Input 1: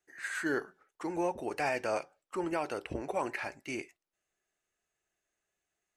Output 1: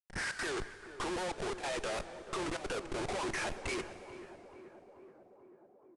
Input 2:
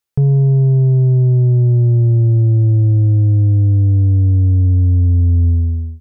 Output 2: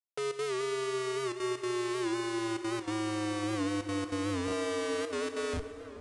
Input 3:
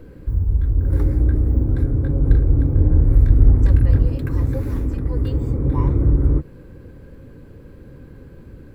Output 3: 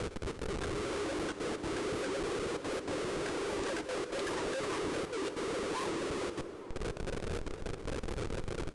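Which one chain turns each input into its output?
elliptic high-pass 370 Hz, stop band 50 dB; reverb removal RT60 1.1 s; Schmitt trigger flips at -49.5 dBFS; trance gate "x.xx.xxxxxxxxxxx" 193 bpm -12 dB; on a send: tape echo 434 ms, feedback 84%, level -11 dB, low-pass 1.2 kHz; on the sum: plate-style reverb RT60 2.7 s, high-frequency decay 0.95×, DRR 13 dB; resampled via 22.05 kHz; warped record 78 rpm, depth 100 cents; trim +4 dB

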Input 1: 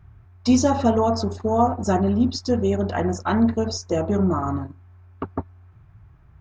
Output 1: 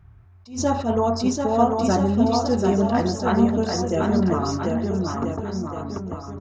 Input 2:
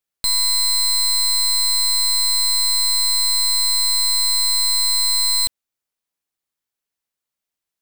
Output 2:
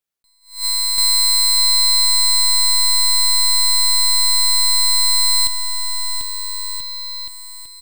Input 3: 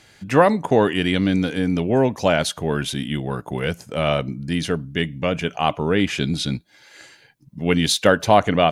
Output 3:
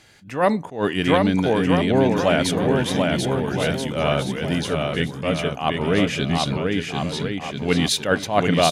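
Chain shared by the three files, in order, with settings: on a send: bouncing-ball echo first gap 740 ms, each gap 0.8×, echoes 5; on the sum: attacks held to a fixed rise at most 160 dB/s; trim -1 dB

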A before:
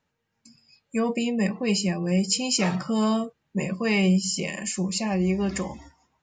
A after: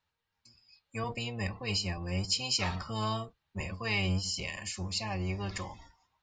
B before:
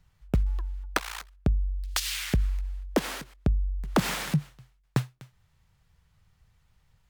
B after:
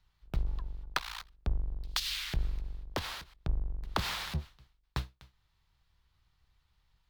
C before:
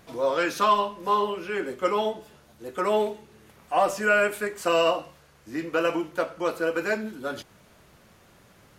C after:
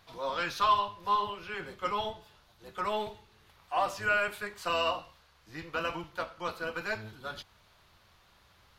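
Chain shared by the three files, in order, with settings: octave divider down 1 oct, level 0 dB; ten-band graphic EQ 125 Hz -4 dB, 250 Hz -9 dB, 500 Hz -4 dB, 1 kHz +5 dB, 4 kHz +9 dB, 8 kHz -5 dB; trim -8 dB

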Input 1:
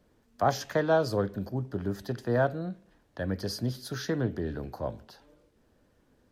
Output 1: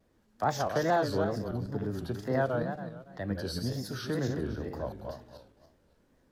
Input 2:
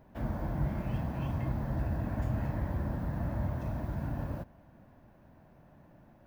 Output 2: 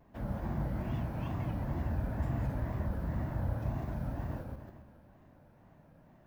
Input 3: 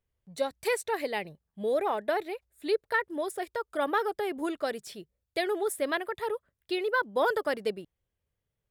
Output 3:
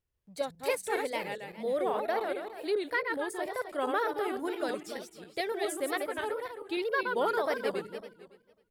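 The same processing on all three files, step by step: backward echo that repeats 138 ms, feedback 51%, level -3.5 dB; wow and flutter 140 cents; trim -3.5 dB

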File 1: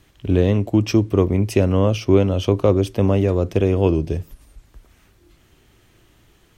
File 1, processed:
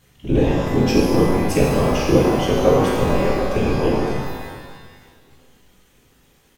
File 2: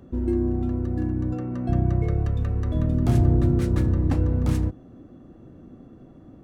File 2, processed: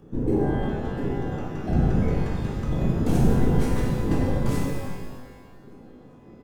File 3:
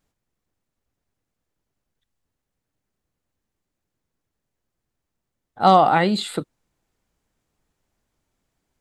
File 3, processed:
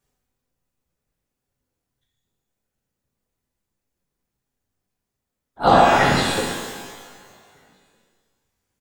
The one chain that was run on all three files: treble shelf 6.5 kHz +5.5 dB; feedback delay 391 ms, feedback 55%, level -23 dB; reverb removal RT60 1.9 s; whisper effect; pitch-shifted reverb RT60 1.5 s, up +12 st, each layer -8 dB, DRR -4.5 dB; trim -3.5 dB

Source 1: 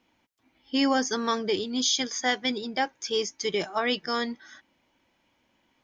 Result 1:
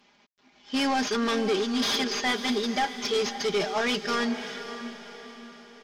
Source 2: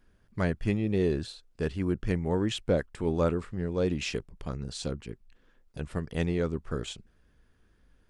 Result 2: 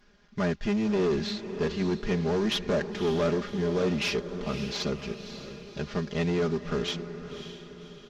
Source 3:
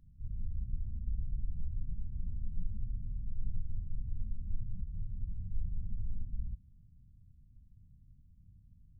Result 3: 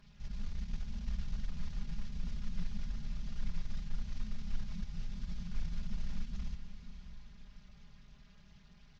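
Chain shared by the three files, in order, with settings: CVSD coder 32 kbps; bass shelf 120 Hz -11 dB; comb 4.9 ms, depth 84%; in parallel at -1.5 dB: peak limiter -23 dBFS; on the sum: saturation -21 dBFS; on a send: echo that smears into a reverb 560 ms, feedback 46%, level -10.5 dB

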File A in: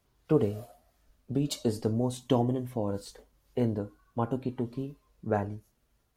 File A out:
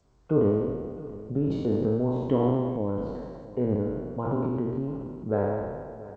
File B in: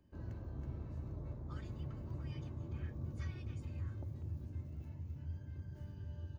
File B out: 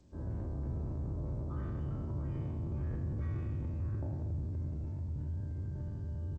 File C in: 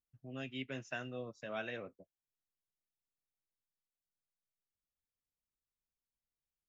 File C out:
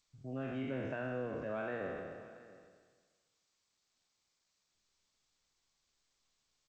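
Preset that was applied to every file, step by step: spectral sustain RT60 1.44 s; dynamic bell 750 Hz, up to -6 dB, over -49 dBFS, Q 4.1; delay 683 ms -21.5 dB; in parallel at -2 dB: compression 20:1, threshold -40 dBFS; on the sum: transient shaper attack -1 dB, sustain +7 dB; low-pass 1.1 kHz 12 dB/octave; de-hum 116.7 Hz, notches 17; G.722 64 kbps 16 kHz

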